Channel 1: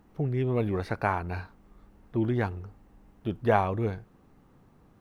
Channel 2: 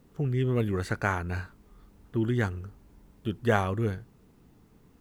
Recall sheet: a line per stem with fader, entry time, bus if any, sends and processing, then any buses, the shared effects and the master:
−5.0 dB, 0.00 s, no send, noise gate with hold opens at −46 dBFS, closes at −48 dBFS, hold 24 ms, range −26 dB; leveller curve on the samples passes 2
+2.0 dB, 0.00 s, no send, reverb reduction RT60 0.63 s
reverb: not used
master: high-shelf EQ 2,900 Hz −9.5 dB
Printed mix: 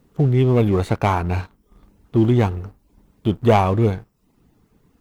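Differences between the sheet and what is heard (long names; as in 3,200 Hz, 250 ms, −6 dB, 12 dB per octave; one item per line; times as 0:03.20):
stem 1 −5.0 dB → +2.0 dB
master: missing high-shelf EQ 2,900 Hz −9.5 dB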